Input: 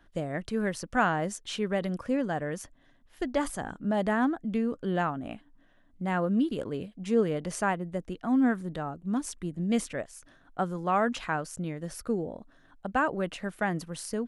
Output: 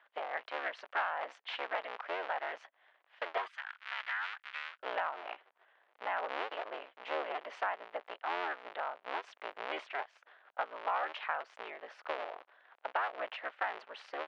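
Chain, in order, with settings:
sub-harmonics by changed cycles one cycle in 3, inverted
high-pass filter 660 Hz 24 dB per octave, from 0:03.48 1,400 Hz, from 0:04.80 620 Hz
downward compressor 3 to 1, threshold −33 dBFS, peak gain reduction 10 dB
low-pass filter 3,100 Hz 24 dB per octave
level +1 dB

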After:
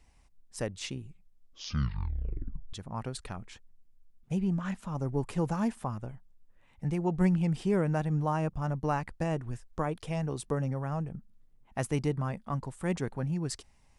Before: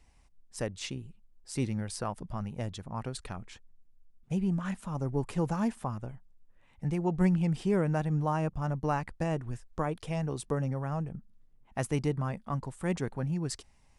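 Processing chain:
0:00.98: tape stop 1.75 s
0:04.39–0:04.96: parametric band 9,500 Hz −8 dB 0.38 octaves

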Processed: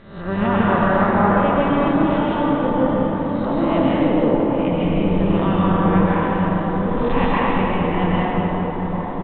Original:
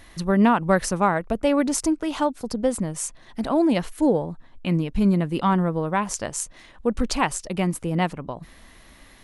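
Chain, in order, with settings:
peak hold with a rise ahead of every peak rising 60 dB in 0.69 s
downsampling to 8,000 Hz
on a send: delay with a low-pass on its return 808 ms, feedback 67%, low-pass 1,100 Hz, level −7.5 dB
on the sum: dense smooth reverb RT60 3.9 s, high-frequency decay 0.55×, pre-delay 115 ms, DRR −7.5 dB
pitch-shifted copies added −12 semitones −11 dB
level −6 dB

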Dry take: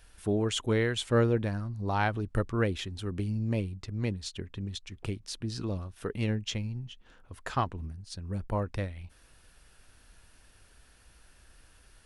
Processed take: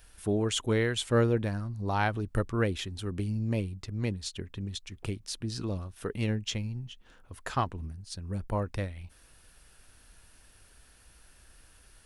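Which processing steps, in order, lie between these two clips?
high-shelf EQ 8,900 Hz +7.5 dB

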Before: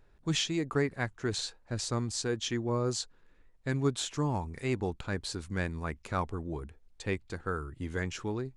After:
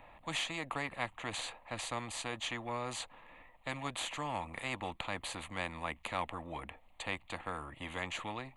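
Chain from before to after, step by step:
three-way crossover with the lows and the highs turned down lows −18 dB, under 320 Hz, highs −16 dB, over 2,800 Hz
phaser with its sweep stopped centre 1,500 Hz, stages 6
every bin compressed towards the loudest bin 2 to 1
level +2.5 dB

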